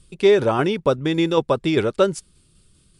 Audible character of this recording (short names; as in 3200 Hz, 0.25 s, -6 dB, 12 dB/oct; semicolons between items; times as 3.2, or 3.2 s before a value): tremolo saw down 5.1 Hz, depth 35%; MP3